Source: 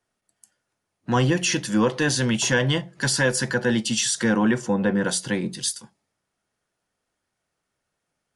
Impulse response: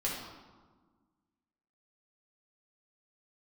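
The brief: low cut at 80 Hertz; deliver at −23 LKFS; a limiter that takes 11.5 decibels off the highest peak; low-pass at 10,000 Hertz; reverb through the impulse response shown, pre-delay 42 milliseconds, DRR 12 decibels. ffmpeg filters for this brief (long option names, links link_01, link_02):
-filter_complex "[0:a]highpass=80,lowpass=10000,alimiter=limit=-20dB:level=0:latency=1,asplit=2[link_01][link_02];[1:a]atrim=start_sample=2205,adelay=42[link_03];[link_02][link_03]afir=irnorm=-1:irlink=0,volume=-17dB[link_04];[link_01][link_04]amix=inputs=2:normalize=0,volume=5.5dB"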